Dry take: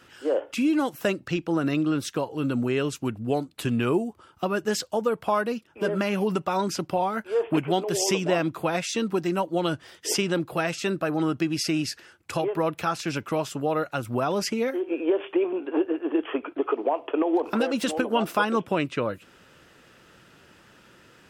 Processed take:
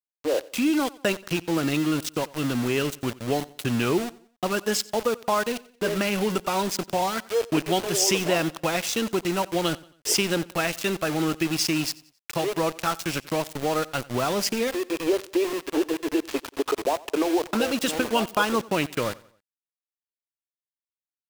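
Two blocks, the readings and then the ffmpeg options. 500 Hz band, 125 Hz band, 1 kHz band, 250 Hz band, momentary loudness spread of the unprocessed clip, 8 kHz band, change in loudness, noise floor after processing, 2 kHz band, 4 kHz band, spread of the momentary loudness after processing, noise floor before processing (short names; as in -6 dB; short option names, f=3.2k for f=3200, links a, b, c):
0.0 dB, -0.5 dB, +0.5 dB, -0.5 dB, 5 LU, +5.0 dB, +1.0 dB, under -85 dBFS, +2.5 dB, +4.5 dB, 5 LU, -56 dBFS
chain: -filter_complex "[0:a]aeval=exprs='val(0)*gte(abs(val(0)),0.0316)':c=same,asplit=2[a][b];[b]aecho=0:1:90|180|270:0.0841|0.0353|0.0148[c];[a][c]amix=inputs=2:normalize=0,adynamicequalizer=threshold=0.01:dfrequency=2100:dqfactor=0.7:tfrequency=2100:tqfactor=0.7:attack=5:release=100:ratio=0.375:range=2.5:mode=boostabove:tftype=highshelf"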